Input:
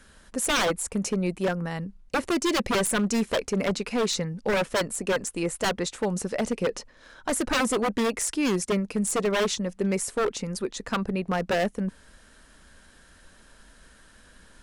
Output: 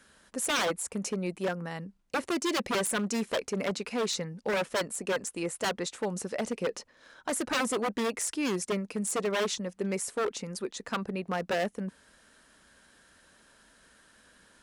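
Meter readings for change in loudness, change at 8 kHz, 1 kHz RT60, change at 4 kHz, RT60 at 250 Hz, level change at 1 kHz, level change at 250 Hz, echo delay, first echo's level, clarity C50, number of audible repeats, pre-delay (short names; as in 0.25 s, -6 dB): -5.0 dB, -4.0 dB, none, -4.0 dB, none, -4.0 dB, -6.5 dB, none, none, none, none, none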